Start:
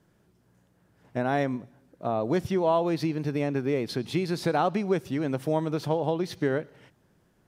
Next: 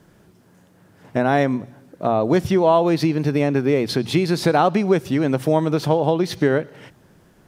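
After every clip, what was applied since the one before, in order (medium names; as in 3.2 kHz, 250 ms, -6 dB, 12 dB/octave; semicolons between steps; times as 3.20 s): hum notches 60/120 Hz; in parallel at 0 dB: compression, threshold -35 dBFS, peak gain reduction 14.5 dB; on the sum: trim +6.5 dB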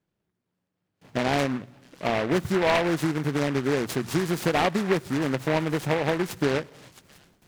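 repeats whose band climbs or falls 665 ms, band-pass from 3.1 kHz, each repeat 0.7 oct, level -12 dB; gate with hold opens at -41 dBFS; delay time shaken by noise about 1.3 kHz, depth 0.13 ms; trim -6.5 dB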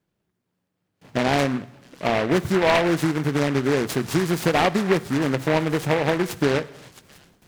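reverberation RT60 0.80 s, pre-delay 17 ms, DRR 17.5 dB; trim +3.5 dB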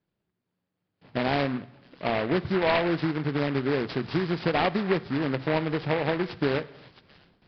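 resampled via 11.025 kHz; trim -5 dB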